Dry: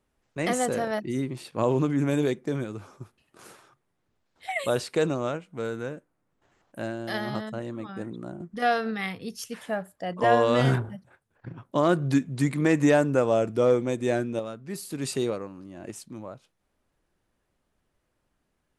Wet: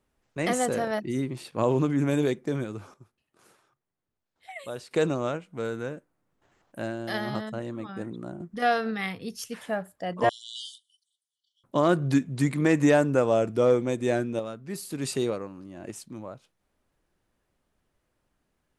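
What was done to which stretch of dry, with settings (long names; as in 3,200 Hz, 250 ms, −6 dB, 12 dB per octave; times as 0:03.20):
0:02.94–0:04.91: clip gain −11 dB
0:10.29–0:11.64: linear-phase brick-wall band-pass 2,900–11,000 Hz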